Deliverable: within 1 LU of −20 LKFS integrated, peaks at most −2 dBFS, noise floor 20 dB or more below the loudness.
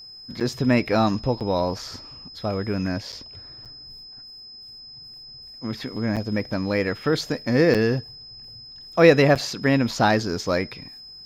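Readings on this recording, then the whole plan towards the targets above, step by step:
number of dropouts 7; longest dropout 7.2 ms; interfering tone 5,100 Hz; level of the tone −40 dBFS; integrated loudness −22.5 LKFS; sample peak −2.0 dBFS; target loudness −20.0 LKFS
→ repair the gap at 0:00.40/0:01.40/0:03.12/0:03.65/0:06.16/0:07.74/0:09.35, 7.2 ms
notch filter 5,100 Hz, Q 30
level +2.5 dB
brickwall limiter −2 dBFS

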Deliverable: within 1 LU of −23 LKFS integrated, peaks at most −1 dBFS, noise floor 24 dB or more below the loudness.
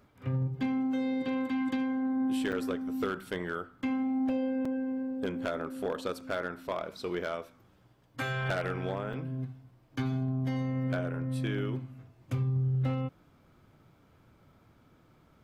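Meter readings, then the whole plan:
share of clipped samples 0.4%; peaks flattened at −24.0 dBFS; number of dropouts 3; longest dropout 4.3 ms; integrated loudness −33.0 LKFS; sample peak −24.0 dBFS; target loudness −23.0 LKFS
→ clipped peaks rebuilt −24 dBFS
repair the gap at 0:02.52/0:04.65/0:09.13, 4.3 ms
level +10 dB

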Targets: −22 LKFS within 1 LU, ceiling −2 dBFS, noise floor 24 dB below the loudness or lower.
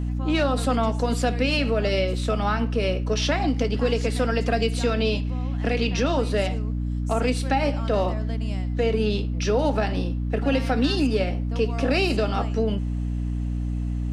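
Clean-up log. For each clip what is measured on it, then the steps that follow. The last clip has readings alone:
mains hum 60 Hz; hum harmonics up to 300 Hz; level of the hum −24 dBFS; integrated loudness −24.0 LKFS; sample peak −9.5 dBFS; target loudness −22.0 LKFS
→ mains-hum notches 60/120/180/240/300 Hz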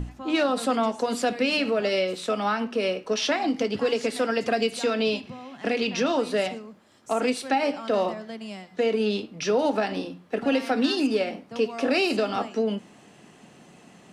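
mains hum none found; integrated loudness −25.5 LKFS; sample peak −11.5 dBFS; target loudness −22.0 LKFS
→ level +3.5 dB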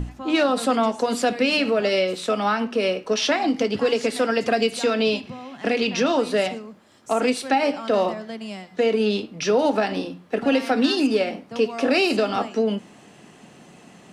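integrated loudness −22.0 LKFS; sample peak −8.0 dBFS; background noise floor −49 dBFS

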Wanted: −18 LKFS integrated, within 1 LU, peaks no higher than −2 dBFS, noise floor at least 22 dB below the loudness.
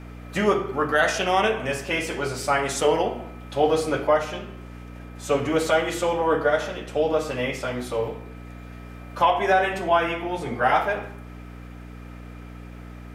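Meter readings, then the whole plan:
crackle rate 39 per second; mains hum 60 Hz; hum harmonics up to 300 Hz; level of the hum −37 dBFS; integrated loudness −23.5 LKFS; sample peak −8.0 dBFS; target loudness −18.0 LKFS
→ click removal
hum removal 60 Hz, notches 5
level +5.5 dB

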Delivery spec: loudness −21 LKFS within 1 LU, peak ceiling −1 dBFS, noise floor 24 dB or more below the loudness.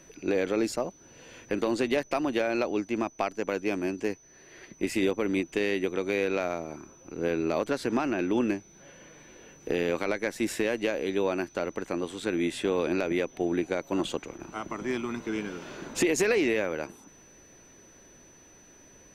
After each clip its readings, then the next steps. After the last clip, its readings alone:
interfering tone 6,000 Hz; level of the tone −55 dBFS; integrated loudness −29.5 LKFS; sample peak −14.0 dBFS; target loudness −21.0 LKFS
→ notch filter 6,000 Hz, Q 30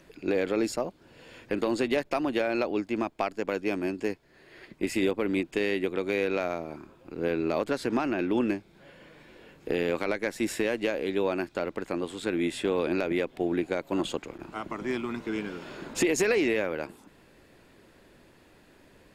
interfering tone none found; integrated loudness −29.5 LKFS; sample peak −14.0 dBFS; target loudness −21.0 LKFS
→ level +8.5 dB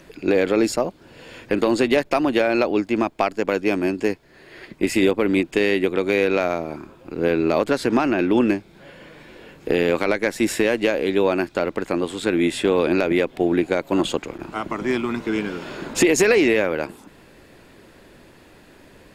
integrated loudness −21.0 LKFS; sample peak −5.5 dBFS; background noise floor −50 dBFS

